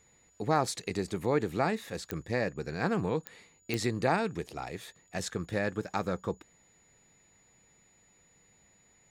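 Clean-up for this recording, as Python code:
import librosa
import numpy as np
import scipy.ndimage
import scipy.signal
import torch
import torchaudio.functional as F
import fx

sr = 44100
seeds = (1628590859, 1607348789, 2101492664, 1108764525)

y = fx.fix_declick_ar(x, sr, threshold=10.0)
y = fx.notch(y, sr, hz=6900.0, q=30.0)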